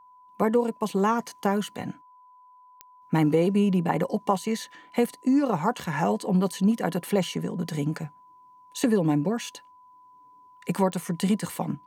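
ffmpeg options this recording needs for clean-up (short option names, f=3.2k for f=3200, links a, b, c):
-af "adeclick=t=4,bandreject=f=1k:w=30"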